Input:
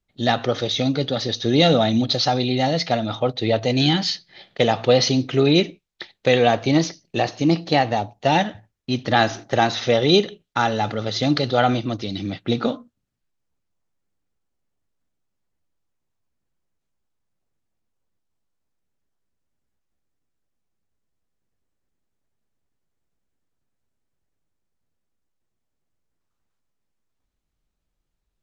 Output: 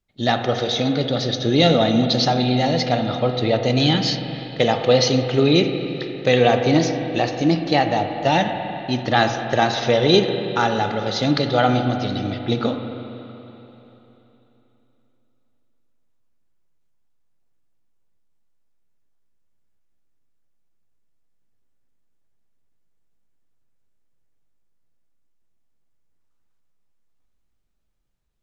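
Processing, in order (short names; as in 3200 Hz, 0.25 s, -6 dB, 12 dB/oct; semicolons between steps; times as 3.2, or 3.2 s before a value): spring tank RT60 3.4 s, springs 40/48/59 ms, chirp 50 ms, DRR 6 dB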